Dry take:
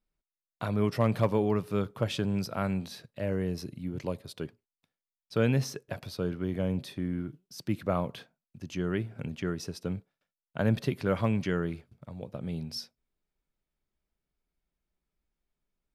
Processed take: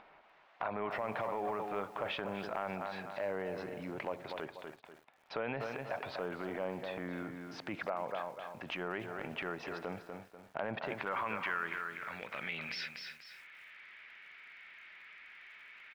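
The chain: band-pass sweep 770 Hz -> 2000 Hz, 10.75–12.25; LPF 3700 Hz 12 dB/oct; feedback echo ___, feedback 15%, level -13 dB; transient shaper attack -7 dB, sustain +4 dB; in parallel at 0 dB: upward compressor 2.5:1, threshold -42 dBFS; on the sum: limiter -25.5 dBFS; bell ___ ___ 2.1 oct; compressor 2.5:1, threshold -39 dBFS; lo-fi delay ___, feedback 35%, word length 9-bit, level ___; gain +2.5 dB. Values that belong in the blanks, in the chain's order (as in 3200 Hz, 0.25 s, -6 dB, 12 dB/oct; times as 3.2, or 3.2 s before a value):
0.244 s, 2300 Hz, +12.5 dB, 0.296 s, -14.5 dB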